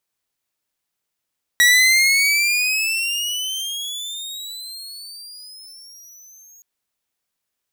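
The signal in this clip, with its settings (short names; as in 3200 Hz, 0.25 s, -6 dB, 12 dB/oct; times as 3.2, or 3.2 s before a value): gliding synth tone saw, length 5.02 s, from 1920 Hz, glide +21.5 st, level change -34 dB, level -7 dB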